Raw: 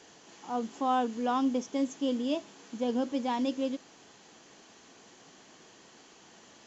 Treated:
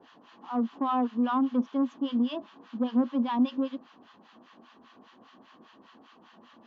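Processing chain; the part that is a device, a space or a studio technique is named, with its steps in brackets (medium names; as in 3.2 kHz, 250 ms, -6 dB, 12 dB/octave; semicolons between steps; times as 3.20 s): guitar amplifier with harmonic tremolo (harmonic tremolo 5 Hz, depth 100%, crossover 910 Hz; saturation -26.5 dBFS, distortion -18 dB; cabinet simulation 91–3600 Hz, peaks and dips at 140 Hz -9 dB, 240 Hz +9 dB, 420 Hz -5 dB, 1.1 kHz +9 dB, 2.2 kHz -6 dB); trim +4 dB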